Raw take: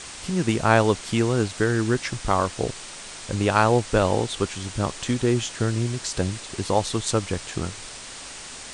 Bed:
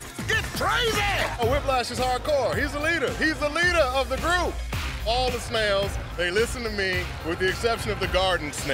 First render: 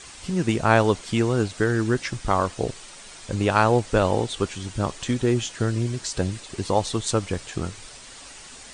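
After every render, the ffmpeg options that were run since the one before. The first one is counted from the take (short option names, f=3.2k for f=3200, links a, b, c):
-af "afftdn=nr=7:nf=-39"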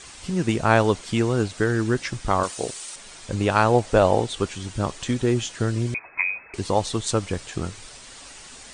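-filter_complex "[0:a]asettb=1/sr,asplit=3[a][b][c];[a]atrim=end=2.434[d];[b]atrim=start=2.43:end=2.96,asetpts=PTS-STARTPTS,afade=t=in:d=0.004:c=qsin,afade=t=out:st=0.526:d=0.004:c=qsin,aemphasis=mode=production:type=bsi[e];[c]atrim=start=2.956[f];[d][e]acrossfade=d=0.004:c1=hsin:c2=qsin[g];[g][f]acrossfade=d=0.004:c1=qsin:c2=hsin,asettb=1/sr,asplit=3[h][i][j];[h]atrim=end=3.744[k];[i]atrim=start=3.74:end=4.2,asetpts=PTS-STARTPTS,afade=t=in:d=0.004:c=qsin,afade=t=out:st=0.456:d=0.004:c=qsin,equalizer=f=670:t=o:w=0.77:g=6.5[l];[j]atrim=start=4.196[m];[k][l]acrossfade=d=0.004:c1=hsin:c2=qsin[n];[n][m]acrossfade=d=0.004:c1=qsin:c2=hsin,asettb=1/sr,asplit=3[o][p][q];[o]atrim=end=5.944[r];[p]atrim=start=5.94:end=6.54,asetpts=PTS-STARTPTS,afade=t=in:d=0.004:c=qsin,afade=t=out:st=0.596:d=0.004:c=qsin,lowpass=f=2.2k:t=q:w=0.5098,lowpass=f=2.2k:t=q:w=0.6013,lowpass=f=2.2k:t=q:w=0.9,lowpass=f=2.2k:t=q:w=2.563,afreqshift=-2600[s];[q]atrim=start=6.536[t];[r][s]acrossfade=d=0.004:c1=hsin:c2=qsin[u];[u][t]acrossfade=d=0.004:c1=qsin:c2=hsin"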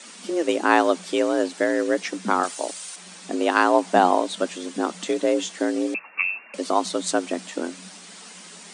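-af "afreqshift=170"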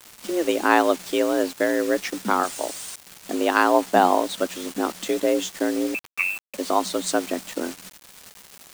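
-af "acrusher=bits=5:mix=0:aa=0.000001"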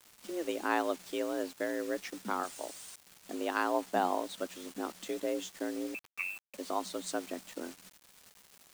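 -af "volume=-13dB"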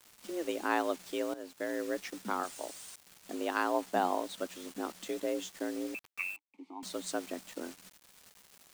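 -filter_complex "[0:a]asettb=1/sr,asplit=3[a][b][c];[a]atrim=end=6.364[d];[b]atrim=start=6.36:end=6.83,asetpts=PTS-STARTPTS,afade=t=in:d=0.004:c=qsin,afade=t=out:st=0.466:d=0.004:c=qsin,asplit=3[e][f][g];[e]bandpass=f=300:t=q:w=8,volume=0dB[h];[f]bandpass=f=870:t=q:w=8,volume=-6dB[i];[g]bandpass=f=2.24k:t=q:w=8,volume=-9dB[j];[h][i][j]amix=inputs=3:normalize=0[k];[c]atrim=start=6.826[l];[d][k]acrossfade=d=0.004:c1=hsin:c2=qsin[m];[m][l]acrossfade=d=0.004:c1=qsin:c2=hsin,asplit=2[n][o];[n]atrim=end=1.34,asetpts=PTS-STARTPTS,afade=t=out:st=1.336:d=0.004:c=hsin:silence=0.199526[p];[o]atrim=start=1.34,asetpts=PTS-STARTPTS,afade=t=in:d=0.41:silence=0.199526[q];[p][q]concat=n=2:v=0:a=1"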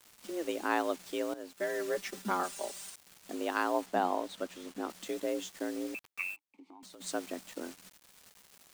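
-filter_complex "[0:a]asettb=1/sr,asplit=3[a][b][c];[a]atrim=end=1.564[d];[b]atrim=start=1.56:end=2.9,asetpts=PTS-STARTPTS,afade=t=in:d=0.004:c=qsin,afade=t=out:st=1.336:d=0.004:c=qsin,aecho=1:1:5.1:0.91,atrim=end_sample=59094[e];[c]atrim=start=2.896[f];[d][e]acrossfade=d=0.004:c1=hsin:c2=qsin[g];[g][f]acrossfade=d=0.004:c1=qsin:c2=hsin,asettb=1/sr,asplit=3[h][i][j];[h]atrim=end=3.864[k];[i]atrim=start=3.86:end=4.9,asetpts=PTS-STARTPTS,afade=t=in:d=0.004:c=qsin,afade=t=out:st=1.036:d=0.004:c=qsin,highshelf=f=5.3k:g=-6.5[l];[j]atrim=start=4.896[m];[k][l]acrossfade=d=0.004:c1=hsin:c2=qsin[n];[n][m]acrossfade=d=0.004:c1=qsin:c2=hsin,asplit=3[o][p][q];[o]afade=t=out:st=6.34:d=0.02[r];[p]acompressor=threshold=-50dB:ratio=6:attack=3.2:release=140:knee=1:detection=peak,afade=t=in:st=6.34:d=0.02,afade=t=out:st=7:d=0.02[s];[q]afade=t=in:st=7:d=0.02[t];[r][s][t]amix=inputs=3:normalize=0"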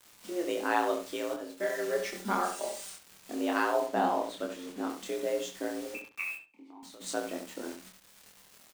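-filter_complex "[0:a]asplit=2[a][b];[b]adelay=26,volume=-2.5dB[c];[a][c]amix=inputs=2:normalize=0,asplit=2[d][e];[e]adelay=70,lowpass=f=3k:p=1,volume=-6.5dB,asplit=2[f][g];[g]adelay=70,lowpass=f=3k:p=1,volume=0.21,asplit=2[h][i];[i]adelay=70,lowpass=f=3k:p=1,volume=0.21[j];[f][h][j]amix=inputs=3:normalize=0[k];[d][k]amix=inputs=2:normalize=0"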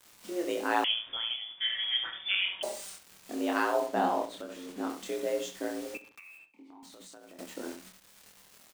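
-filter_complex "[0:a]asettb=1/sr,asplit=3[a][b][c];[a]atrim=end=0.844[d];[b]atrim=start=0.84:end=2.63,asetpts=PTS-STARTPTS,afade=t=in:d=0.004:c=qsin,afade=t=out:st=1.786:d=0.004:c=qsin,lowpass=f=3.1k:t=q:w=0.5098,lowpass=f=3.1k:t=q:w=0.6013,lowpass=f=3.1k:t=q:w=0.9,lowpass=f=3.1k:t=q:w=2.563,afreqshift=-3700[e];[c]atrim=start=2.626[f];[d][e]acrossfade=d=0.004:c1=hsin:c2=qsin[g];[g][f]acrossfade=d=0.004:c1=qsin:c2=hsin,asettb=1/sr,asplit=3[h][i][j];[h]atrim=end=4.254[k];[i]atrim=start=4.25:end=4.69,asetpts=PTS-STARTPTS,afade=t=in:d=0.004:c=qsin,afade=t=out:st=0.436:d=0.004:c=qsin,acompressor=threshold=-39dB:ratio=2.5:attack=3.2:release=140:knee=1:detection=peak[l];[j]atrim=start=4.686[m];[k][l]acrossfade=d=0.004:c1=hsin:c2=qsin[n];[n][m]acrossfade=d=0.004:c1=qsin:c2=hsin,asettb=1/sr,asplit=3[o][p][q];[o]atrim=end=5.974[r];[p]atrim=start=5.97:end=7.39,asetpts=PTS-STARTPTS,afade=t=in:d=0.004:c=qsin,afade=t=out:st=1.416:d=0.004:c=qsin,acompressor=threshold=-47dB:ratio=16:attack=3.2:release=140:knee=1:detection=peak[s];[q]atrim=start=7.386[t];[r][s]acrossfade=d=0.004:c1=hsin:c2=qsin[u];[u][t]acrossfade=d=0.004:c1=qsin:c2=hsin"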